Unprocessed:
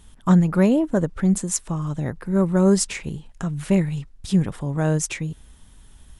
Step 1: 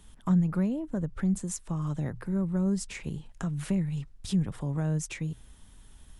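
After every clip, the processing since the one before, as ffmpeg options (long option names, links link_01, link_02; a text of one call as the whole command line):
ffmpeg -i in.wav -filter_complex "[0:a]bandreject=frequency=60:width_type=h:width=6,bandreject=frequency=120:width_type=h:width=6,acrossover=split=180[link_01][link_02];[link_02]acompressor=threshold=-30dB:ratio=6[link_03];[link_01][link_03]amix=inputs=2:normalize=0,volume=-4dB" out.wav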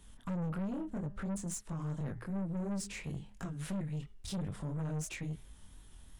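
ffmpeg -i in.wav -af "bandreject=frequency=204.9:width_type=h:width=4,bandreject=frequency=409.8:width_type=h:width=4,bandreject=frequency=614.7:width_type=h:width=4,bandreject=frequency=819.6:width_type=h:width=4,bandreject=frequency=1024.5:width_type=h:width=4,bandreject=frequency=1229.4:width_type=h:width=4,bandreject=frequency=1434.3:width_type=h:width=4,bandreject=frequency=1639.2:width_type=h:width=4,bandreject=frequency=1844.1:width_type=h:width=4,bandreject=frequency=2049:width_type=h:width=4,bandreject=frequency=2253.9:width_type=h:width=4,bandreject=frequency=2458.8:width_type=h:width=4,bandreject=frequency=2663.7:width_type=h:width=4,bandreject=frequency=2868.6:width_type=h:width=4,bandreject=frequency=3073.5:width_type=h:width=4,bandreject=frequency=3278.4:width_type=h:width=4,bandreject=frequency=3483.3:width_type=h:width=4,flanger=delay=20:depth=5.9:speed=2.9,aeval=exprs='(tanh(56.2*val(0)+0.25)-tanh(0.25))/56.2':channel_layout=same,volume=1dB" out.wav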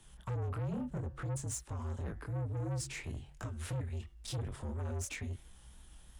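ffmpeg -i in.wav -filter_complex "[0:a]acrossover=split=130|3800[link_01][link_02][link_03];[link_01]acompressor=threshold=-52dB:ratio=6[link_04];[link_04][link_02][link_03]amix=inputs=3:normalize=0,afreqshift=-65,volume=1dB" out.wav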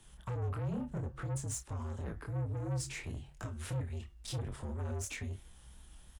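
ffmpeg -i in.wav -filter_complex "[0:a]asplit=2[link_01][link_02];[link_02]adelay=30,volume=-12dB[link_03];[link_01][link_03]amix=inputs=2:normalize=0" out.wav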